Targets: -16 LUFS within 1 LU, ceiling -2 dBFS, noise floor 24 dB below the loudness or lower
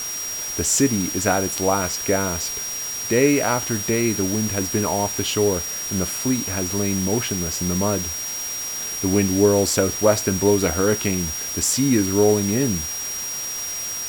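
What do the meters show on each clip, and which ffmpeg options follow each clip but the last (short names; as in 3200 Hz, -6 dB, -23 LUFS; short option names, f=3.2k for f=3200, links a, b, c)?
steady tone 5700 Hz; tone level -27 dBFS; noise floor -29 dBFS; noise floor target -45 dBFS; loudness -21.0 LUFS; peak -3.5 dBFS; loudness target -16.0 LUFS
-> -af "bandreject=f=5.7k:w=30"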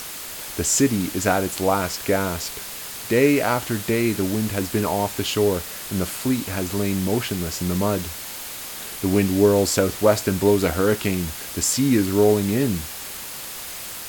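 steady tone none; noise floor -34 dBFS; noise floor target -46 dBFS
-> -af "afftdn=nr=12:nf=-34"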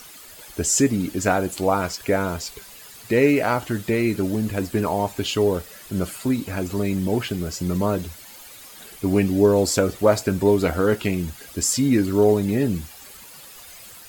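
noise floor -43 dBFS; noise floor target -46 dBFS
-> -af "afftdn=nr=6:nf=-43"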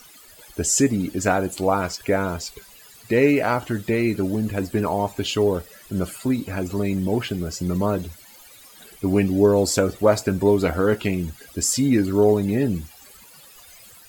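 noise floor -48 dBFS; loudness -22.0 LUFS; peak -4.0 dBFS; loudness target -16.0 LUFS
-> -af "volume=6dB,alimiter=limit=-2dB:level=0:latency=1"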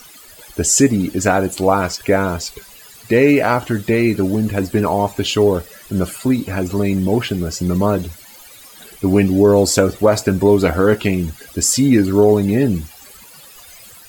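loudness -16.0 LUFS; peak -2.0 dBFS; noise floor -42 dBFS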